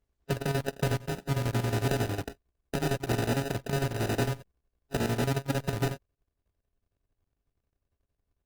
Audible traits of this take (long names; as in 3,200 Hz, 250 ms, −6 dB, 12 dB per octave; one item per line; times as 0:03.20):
a buzz of ramps at a fixed pitch in blocks of 64 samples
chopped level 11 Hz, depth 65%, duty 65%
aliases and images of a low sample rate 1,100 Hz, jitter 0%
Opus